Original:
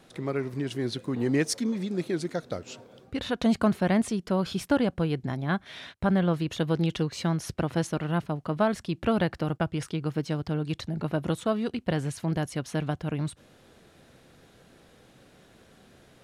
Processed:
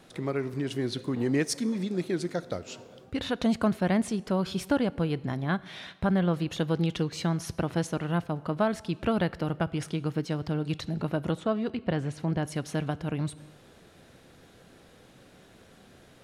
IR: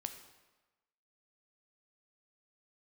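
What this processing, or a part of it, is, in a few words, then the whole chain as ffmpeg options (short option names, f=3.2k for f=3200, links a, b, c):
ducked reverb: -filter_complex "[0:a]asplit=3[a][b][c];[1:a]atrim=start_sample=2205[d];[b][d]afir=irnorm=-1:irlink=0[e];[c]apad=whole_len=716125[f];[e][f]sidechaincompress=threshold=-26dB:ratio=8:attack=5.7:release=872,volume=-0.5dB[g];[a][g]amix=inputs=2:normalize=0,asettb=1/sr,asplit=3[h][i][j];[h]atrim=end=11.314[k];[i]atrim=start=11.31:end=12.45,asetpts=PTS-STARTPTS,afade=t=in:d=0.004:c=qsin,afade=t=out:st=1.136:d=0.004:c=qsin,aemphasis=mode=reproduction:type=50fm[l];[j]atrim=start=12.446[m];[k][l]acrossfade=d=0.004:c1=hsin:c2=qsin[n];[n][m]acrossfade=d=0.004:c1=qsin:c2=hsin,volume=-3.5dB"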